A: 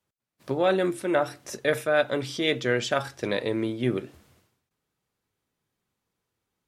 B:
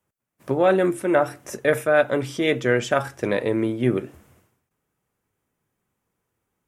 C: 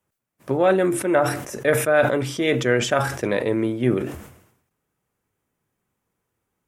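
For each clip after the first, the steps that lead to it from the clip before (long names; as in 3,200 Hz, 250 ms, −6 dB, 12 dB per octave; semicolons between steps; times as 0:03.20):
parametric band 4,200 Hz −11.5 dB 0.88 octaves; level +5 dB
level that may fall only so fast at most 76 dB per second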